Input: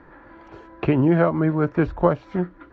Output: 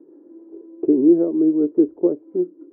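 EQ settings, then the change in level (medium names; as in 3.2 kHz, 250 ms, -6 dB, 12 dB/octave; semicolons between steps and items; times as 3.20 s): Butterworth band-pass 350 Hz, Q 2.5; +7.0 dB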